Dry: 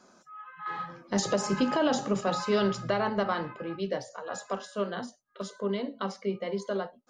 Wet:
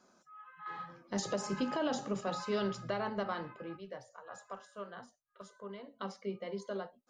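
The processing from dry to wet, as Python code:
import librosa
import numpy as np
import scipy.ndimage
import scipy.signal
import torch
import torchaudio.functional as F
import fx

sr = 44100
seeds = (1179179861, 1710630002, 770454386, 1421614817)

y = fx.curve_eq(x, sr, hz=(100.0, 240.0, 1200.0, 4400.0, 8300.0), db=(0, -11, -1, -10, -4), at=(3.77, 6.0))
y = F.gain(torch.from_numpy(y), -8.0).numpy()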